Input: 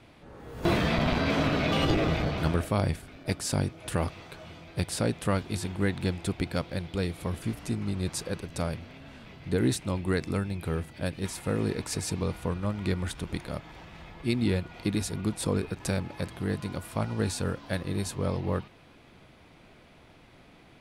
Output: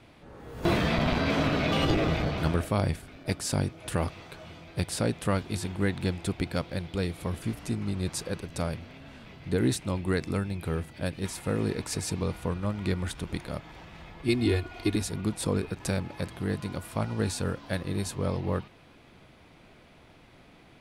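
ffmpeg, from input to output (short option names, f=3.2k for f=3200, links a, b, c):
-filter_complex "[0:a]asettb=1/sr,asplit=3[a][b][c];[a]atrim=end=14.284[d];[b]atrim=start=14.28:end=14.96,asetpts=PTS-STARTPTS,afade=t=in:d=0.004:c=qsin,afade=t=out:st=0.676:d=0.004:c=qsin,aecho=1:1:2.8:0.87,atrim=end_sample=29988[e];[c]atrim=start=14.956[f];[d][e]acrossfade=d=0.004:c1=hsin:c2=qsin[g];[g][f]acrossfade=d=0.004:c1=qsin:c2=hsin"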